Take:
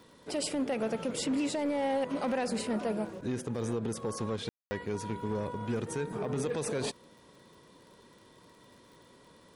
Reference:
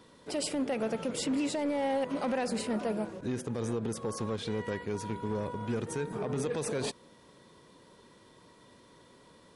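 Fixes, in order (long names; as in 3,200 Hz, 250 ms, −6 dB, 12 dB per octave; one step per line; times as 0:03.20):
click removal
ambience match 0:04.49–0:04.71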